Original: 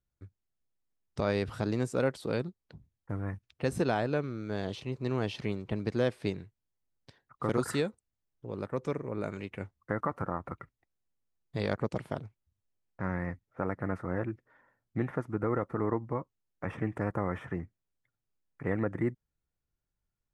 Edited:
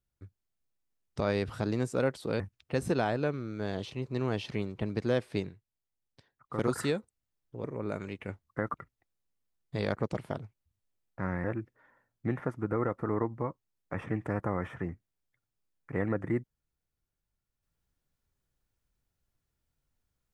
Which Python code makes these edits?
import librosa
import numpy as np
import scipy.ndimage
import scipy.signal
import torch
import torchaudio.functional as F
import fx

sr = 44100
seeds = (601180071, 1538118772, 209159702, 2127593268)

y = fx.edit(x, sr, fx.cut(start_s=2.4, length_s=0.9),
    fx.clip_gain(start_s=6.39, length_s=1.09, db=-5.0),
    fx.cut(start_s=8.54, length_s=0.42),
    fx.cut(start_s=10.06, length_s=0.49),
    fx.cut(start_s=13.25, length_s=0.9), tone=tone)